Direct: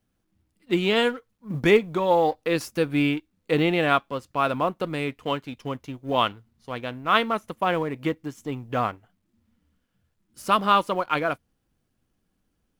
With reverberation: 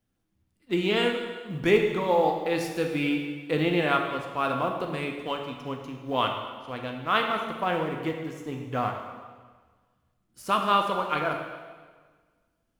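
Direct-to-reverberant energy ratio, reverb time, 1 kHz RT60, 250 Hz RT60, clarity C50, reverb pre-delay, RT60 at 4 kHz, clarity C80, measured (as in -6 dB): 2.5 dB, 1.5 s, 1.5 s, 1.5 s, 4.5 dB, 8 ms, 1.4 s, 6.0 dB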